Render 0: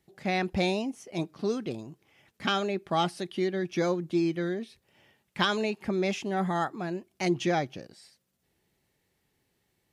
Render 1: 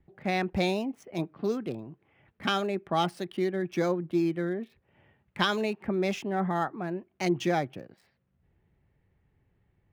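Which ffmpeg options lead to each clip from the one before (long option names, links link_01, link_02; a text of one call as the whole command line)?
ffmpeg -i in.wav -filter_complex "[0:a]acrossover=split=130|2600[link_01][link_02][link_03];[link_01]acompressor=mode=upward:threshold=-57dB:ratio=2.5[link_04];[link_03]aeval=exprs='sgn(val(0))*max(abs(val(0))-0.00335,0)':channel_layout=same[link_05];[link_04][link_02][link_05]amix=inputs=3:normalize=0" out.wav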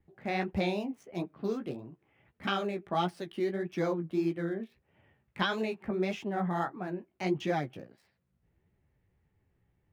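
ffmpeg -i in.wav -filter_complex "[0:a]flanger=delay=9.1:depth=9.9:regen=-18:speed=1.6:shape=triangular,acrossover=split=4300[link_01][link_02];[link_02]acompressor=threshold=-54dB:ratio=4:attack=1:release=60[link_03];[link_01][link_03]amix=inputs=2:normalize=0" out.wav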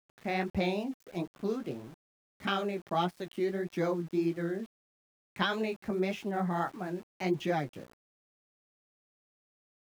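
ffmpeg -i in.wav -af "aeval=exprs='val(0)*gte(abs(val(0)),0.00316)':channel_layout=same" out.wav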